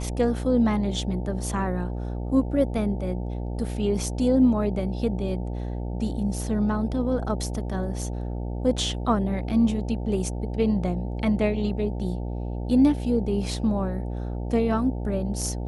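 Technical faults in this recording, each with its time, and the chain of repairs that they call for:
mains buzz 60 Hz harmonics 15 −30 dBFS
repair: hum removal 60 Hz, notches 15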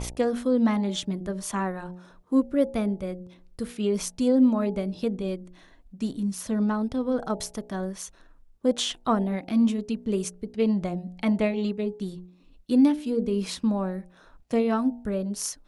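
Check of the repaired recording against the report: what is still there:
none of them is left

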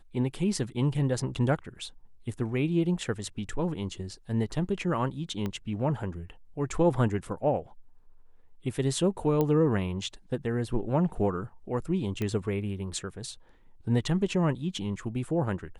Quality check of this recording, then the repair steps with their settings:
0:05.46: click −20 dBFS
0:09.41: click −15 dBFS
0:12.22: click −18 dBFS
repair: click removal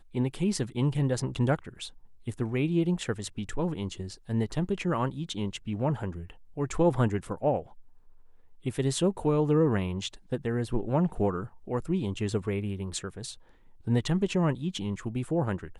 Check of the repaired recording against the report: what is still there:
0:05.46: click

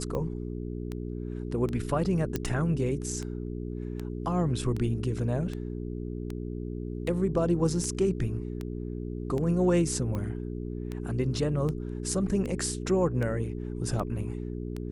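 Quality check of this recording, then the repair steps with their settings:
mains hum 60 Hz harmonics 7 −35 dBFS
scratch tick 78 rpm −22 dBFS
0:02.36: click −14 dBFS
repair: click removal
hum removal 60 Hz, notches 7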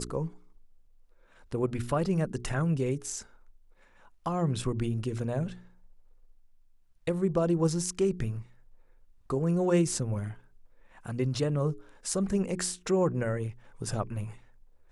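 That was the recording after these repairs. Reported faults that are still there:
none of them is left

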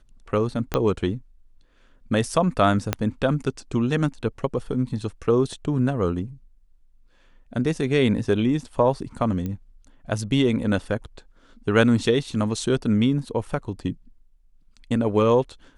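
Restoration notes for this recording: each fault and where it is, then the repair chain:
0:00.74: click −8 dBFS
0:02.93: click −6 dBFS
0:09.46: click −18 dBFS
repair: click removal

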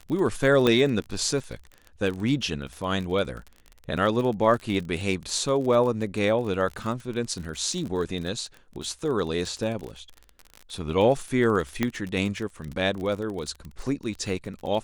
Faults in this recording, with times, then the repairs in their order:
surface crackle 33 per second −31 dBFS
0:00.67: click −8 dBFS
0:11.83: click −10 dBFS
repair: click removal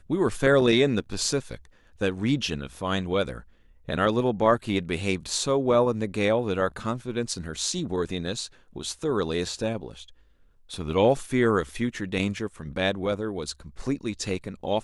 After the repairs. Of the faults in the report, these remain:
none of them is left

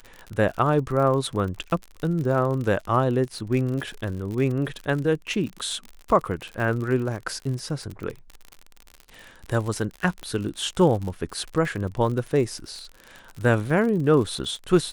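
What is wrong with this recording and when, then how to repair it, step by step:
surface crackle 56 per second −30 dBFS
0:10.23: click −21 dBFS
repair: click removal

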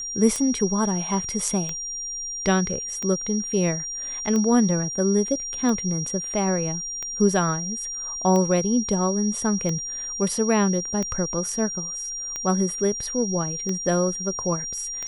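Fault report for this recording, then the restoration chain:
scratch tick 45 rpm −15 dBFS
whistle 5,700 Hz −29 dBFS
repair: click removal
notch filter 5,700 Hz, Q 30

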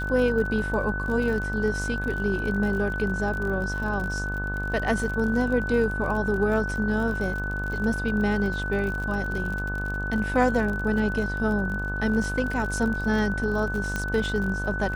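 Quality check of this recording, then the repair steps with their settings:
mains buzz 50 Hz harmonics 34 −31 dBFS
surface crackle 46 per second −31 dBFS
whistle 1,500 Hz −30 dBFS
0:13.96: click −14 dBFS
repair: click removal
hum removal 50 Hz, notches 34
notch filter 1,500 Hz, Q 30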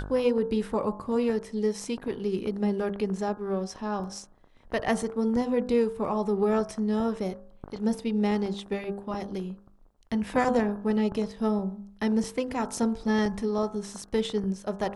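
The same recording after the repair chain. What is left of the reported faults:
none of them is left

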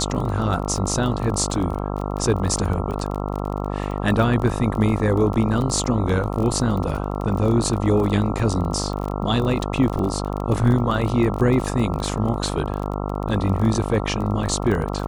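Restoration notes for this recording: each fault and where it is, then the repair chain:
mains buzz 50 Hz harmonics 27 −26 dBFS
surface crackle 27 per second −26 dBFS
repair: click removal
hum removal 50 Hz, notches 27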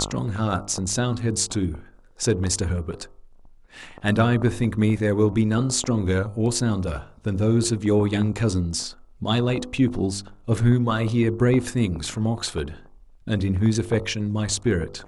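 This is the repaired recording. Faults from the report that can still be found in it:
none of them is left

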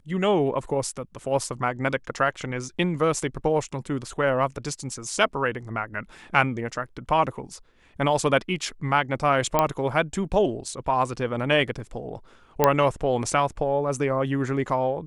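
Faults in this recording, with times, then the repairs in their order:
0:09.59: click −6 dBFS
0:12.64: click −4 dBFS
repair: click removal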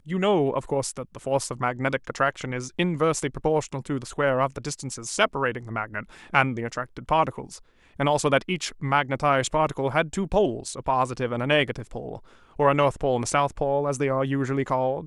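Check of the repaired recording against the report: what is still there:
0:12.64: click

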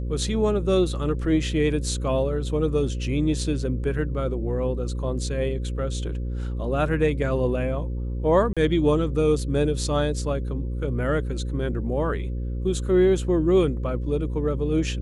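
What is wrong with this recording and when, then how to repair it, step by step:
mains buzz 60 Hz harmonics 9 −28 dBFS
0:08.53–0:08.57: drop-out 36 ms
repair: hum removal 60 Hz, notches 9
repair the gap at 0:08.53, 36 ms

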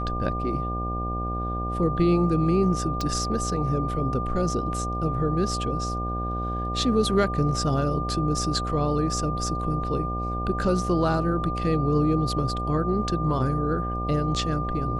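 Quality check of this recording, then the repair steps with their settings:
mains buzz 60 Hz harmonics 13 −30 dBFS
whistle 1,200 Hz −30 dBFS
0:03.01: click −15 dBFS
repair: click removal
hum removal 60 Hz, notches 13
notch filter 1,200 Hz, Q 30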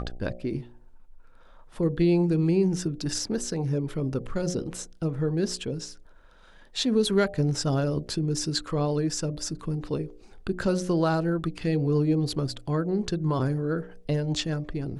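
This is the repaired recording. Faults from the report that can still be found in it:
none of them is left

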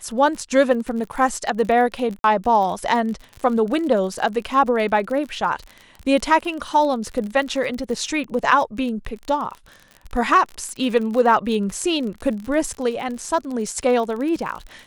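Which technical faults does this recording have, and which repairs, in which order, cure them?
surface crackle 40 per second −28 dBFS
0:02.19–0:02.24: drop-out 52 ms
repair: click removal
repair the gap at 0:02.19, 52 ms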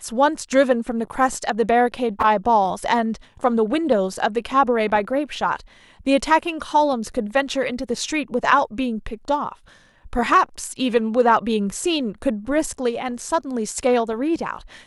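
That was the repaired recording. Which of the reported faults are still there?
none of them is left

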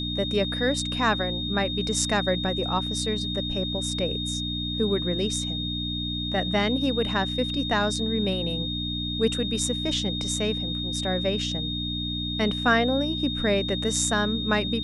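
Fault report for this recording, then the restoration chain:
mains hum 60 Hz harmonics 5 −32 dBFS
whistle 3,700 Hz −30 dBFS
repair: hum removal 60 Hz, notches 5
notch filter 3,700 Hz, Q 30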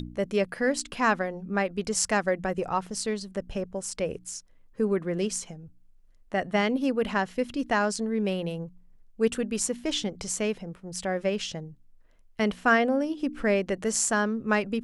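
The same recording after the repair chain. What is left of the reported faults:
none of them is left

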